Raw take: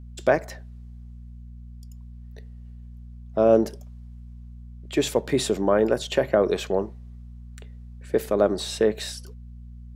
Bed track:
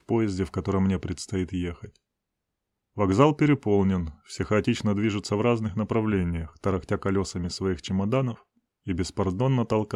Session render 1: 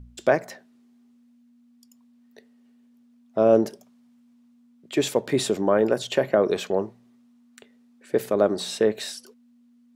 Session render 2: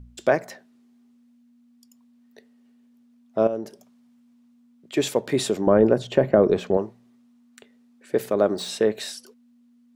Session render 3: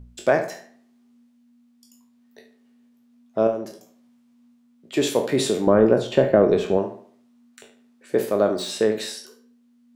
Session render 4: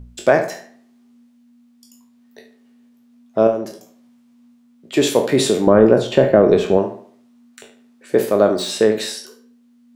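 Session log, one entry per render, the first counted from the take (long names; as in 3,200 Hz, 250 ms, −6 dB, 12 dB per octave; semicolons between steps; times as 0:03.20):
hum removal 60 Hz, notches 3
0:03.47–0:04.94: downward compressor 1.5 to 1, threshold −46 dBFS; 0:05.67–0:06.77: spectral tilt −3 dB per octave; 0:08.28–0:08.69: running median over 3 samples
peak hold with a decay on every bin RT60 0.33 s; on a send: tape delay 72 ms, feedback 42%, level −11.5 dB, low-pass 4,000 Hz
level +5.5 dB; brickwall limiter −1 dBFS, peak gain reduction 3 dB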